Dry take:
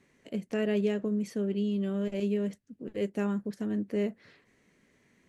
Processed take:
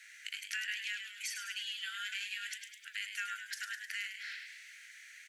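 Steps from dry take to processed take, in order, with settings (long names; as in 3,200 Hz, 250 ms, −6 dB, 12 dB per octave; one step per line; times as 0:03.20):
Chebyshev high-pass filter 1,400 Hz, order 8
downward compressor 4 to 1, threshold −55 dBFS, peak gain reduction 13.5 dB
echo with shifted repeats 103 ms, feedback 59%, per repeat +94 Hz, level −7 dB
level +16.5 dB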